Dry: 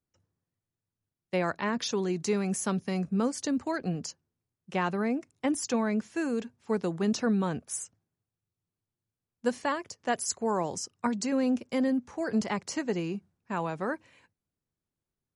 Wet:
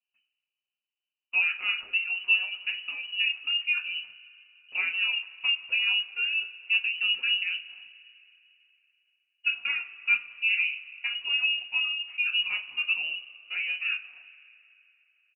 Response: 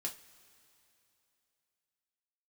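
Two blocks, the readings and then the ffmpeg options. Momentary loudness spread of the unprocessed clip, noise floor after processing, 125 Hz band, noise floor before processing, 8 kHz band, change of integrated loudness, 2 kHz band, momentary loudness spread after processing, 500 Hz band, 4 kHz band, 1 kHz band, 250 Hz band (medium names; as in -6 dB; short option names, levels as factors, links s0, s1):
7 LU, under -85 dBFS, under -35 dB, under -85 dBFS, under -40 dB, +4.5 dB, +13.5 dB, 9 LU, under -30 dB, +15.5 dB, -15.0 dB, under -40 dB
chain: -filter_complex "[0:a]firequalizer=gain_entry='entry(160,0);entry(620,13);entry(1000,-2)':delay=0.05:min_phase=1[s0];[1:a]atrim=start_sample=2205[s1];[s0][s1]afir=irnorm=-1:irlink=0,lowpass=f=2600:t=q:w=0.5098,lowpass=f=2600:t=q:w=0.6013,lowpass=f=2600:t=q:w=0.9,lowpass=f=2600:t=q:w=2.563,afreqshift=-3100,volume=0.596"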